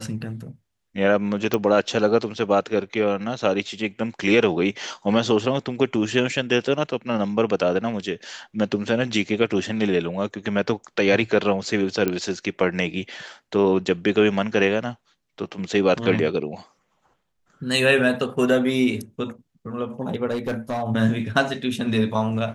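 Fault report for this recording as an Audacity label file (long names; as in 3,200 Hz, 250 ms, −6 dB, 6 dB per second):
1.540000	1.540000	click −8 dBFS
12.080000	12.080000	click −9 dBFS
20.310000	20.830000	clipping −21.5 dBFS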